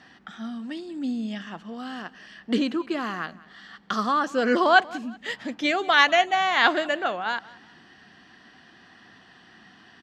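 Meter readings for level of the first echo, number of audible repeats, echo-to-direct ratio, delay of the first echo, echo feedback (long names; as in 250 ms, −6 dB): −21.0 dB, 2, −20.5 dB, 187 ms, 33%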